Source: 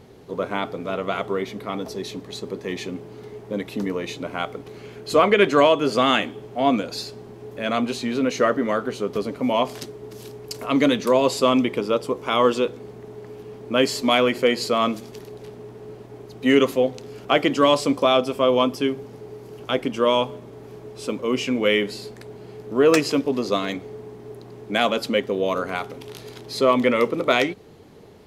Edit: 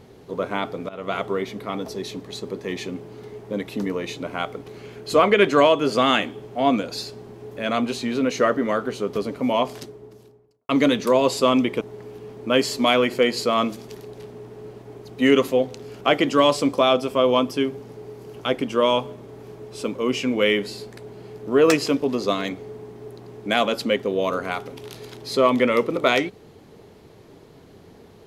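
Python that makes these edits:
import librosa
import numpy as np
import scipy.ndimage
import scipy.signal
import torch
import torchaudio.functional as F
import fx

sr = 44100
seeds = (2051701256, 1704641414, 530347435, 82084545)

y = fx.studio_fade_out(x, sr, start_s=9.49, length_s=1.2)
y = fx.edit(y, sr, fx.fade_in_from(start_s=0.89, length_s=0.25, floor_db=-19.0),
    fx.cut(start_s=11.81, length_s=1.24), tone=tone)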